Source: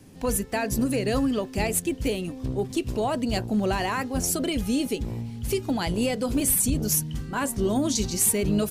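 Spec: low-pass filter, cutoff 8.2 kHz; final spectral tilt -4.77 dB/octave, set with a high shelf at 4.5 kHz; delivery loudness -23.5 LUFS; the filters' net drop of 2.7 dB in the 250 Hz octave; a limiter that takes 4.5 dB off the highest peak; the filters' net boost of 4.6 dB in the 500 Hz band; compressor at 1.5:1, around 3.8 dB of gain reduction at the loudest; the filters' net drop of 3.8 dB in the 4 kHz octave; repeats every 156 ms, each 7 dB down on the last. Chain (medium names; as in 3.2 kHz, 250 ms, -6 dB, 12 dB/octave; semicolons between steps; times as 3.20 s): low-pass 8.2 kHz; peaking EQ 250 Hz -5.5 dB; peaking EQ 500 Hz +7.5 dB; peaking EQ 4 kHz -7.5 dB; treble shelf 4.5 kHz +4 dB; compression 1.5:1, threshold -29 dBFS; peak limiter -20.5 dBFS; feedback delay 156 ms, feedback 45%, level -7 dB; trim +5.5 dB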